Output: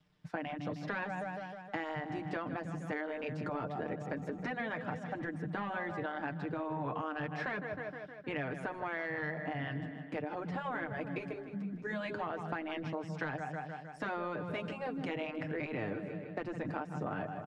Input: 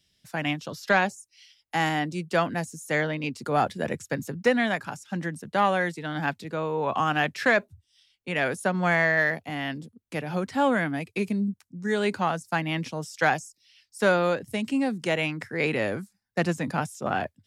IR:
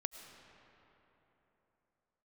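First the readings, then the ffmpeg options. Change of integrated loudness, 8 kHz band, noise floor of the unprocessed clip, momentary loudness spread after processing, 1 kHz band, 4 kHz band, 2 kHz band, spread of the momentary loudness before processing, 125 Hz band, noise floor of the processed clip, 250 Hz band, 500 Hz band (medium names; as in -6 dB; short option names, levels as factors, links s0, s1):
-12.0 dB, under -20 dB, -74 dBFS, 4 LU, -12.0 dB, -16.5 dB, -13.0 dB, 9 LU, -9.0 dB, -48 dBFS, -10.5 dB, -12.0 dB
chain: -af "acrusher=bits=10:mix=0:aa=0.000001,lowpass=f=1400:p=1,equalizer=f=170:w=3.6:g=7,aecho=1:1:6.6:0.61,aecho=1:1:156|312|468|624|780|936:0.168|0.099|0.0584|0.0345|0.0203|0.012,asoftclip=type=tanh:threshold=0.282,alimiter=limit=0.106:level=0:latency=1:release=229,aemphasis=mode=reproduction:type=50fm,afftfilt=real='re*lt(hypot(re,im),0.251)':imag='im*lt(hypot(re,im),0.251)':win_size=1024:overlap=0.75,acompressor=threshold=0.02:ratio=6"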